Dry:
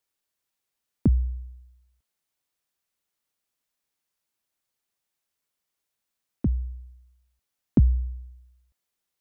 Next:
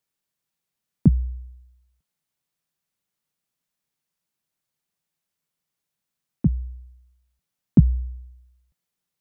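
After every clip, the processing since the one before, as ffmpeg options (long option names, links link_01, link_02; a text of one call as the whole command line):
ffmpeg -i in.wav -af "equalizer=frequency=160:width=1.9:gain=12,volume=-1dB" out.wav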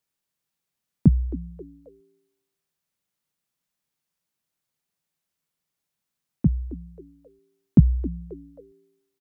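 ffmpeg -i in.wav -filter_complex "[0:a]asplit=4[link_01][link_02][link_03][link_04];[link_02]adelay=267,afreqshift=110,volume=-18dB[link_05];[link_03]adelay=534,afreqshift=220,volume=-26.9dB[link_06];[link_04]adelay=801,afreqshift=330,volume=-35.7dB[link_07];[link_01][link_05][link_06][link_07]amix=inputs=4:normalize=0" out.wav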